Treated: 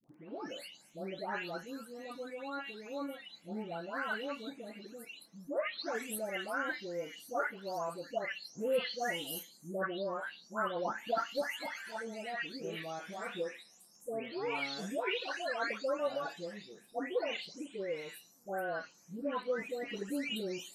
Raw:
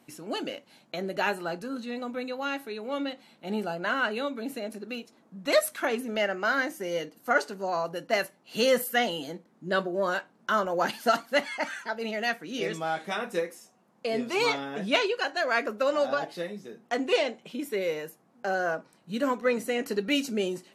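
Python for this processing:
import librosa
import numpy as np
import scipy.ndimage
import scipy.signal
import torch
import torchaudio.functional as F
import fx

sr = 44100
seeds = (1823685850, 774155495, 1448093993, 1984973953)

y = fx.spec_delay(x, sr, highs='late', ms=499)
y = fx.dmg_crackle(y, sr, seeds[0], per_s=11.0, level_db=-49.0)
y = y * librosa.db_to_amplitude(-8.0)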